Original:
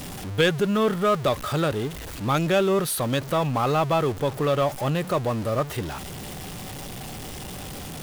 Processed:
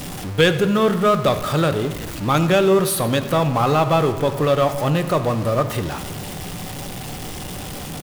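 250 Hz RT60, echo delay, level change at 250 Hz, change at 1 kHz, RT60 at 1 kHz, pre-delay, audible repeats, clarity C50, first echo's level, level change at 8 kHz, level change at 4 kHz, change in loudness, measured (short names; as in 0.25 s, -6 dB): 2.0 s, 96 ms, +5.5 dB, +5.0 dB, 1.5 s, 4 ms, 1, 11.0 dB, -17.5 dB, +4.5 dB, +5.0 dB, +5.0 dB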